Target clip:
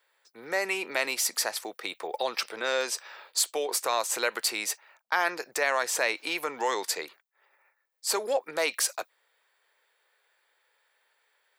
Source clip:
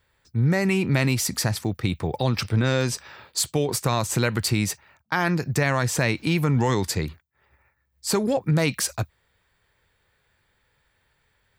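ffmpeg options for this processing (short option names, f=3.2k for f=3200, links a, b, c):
-af "highpass=f=460:w=0.5412,highpass=f=460:w=1.3066,equalizer=f=11k:w=3.8:g=2.5,volume=-1.5dB"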